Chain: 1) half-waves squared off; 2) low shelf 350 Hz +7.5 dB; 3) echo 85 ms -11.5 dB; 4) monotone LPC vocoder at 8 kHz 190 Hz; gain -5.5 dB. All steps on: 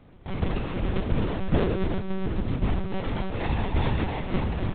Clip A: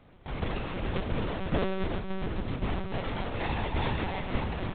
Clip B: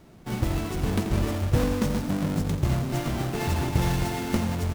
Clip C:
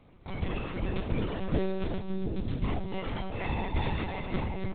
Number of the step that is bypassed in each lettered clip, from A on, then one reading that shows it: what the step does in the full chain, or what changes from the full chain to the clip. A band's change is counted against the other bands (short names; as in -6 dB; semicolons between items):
2, 125 Hz band -5.0 dB; 4, 500 Hz band -2.5 dB; 1, distortion -5 dB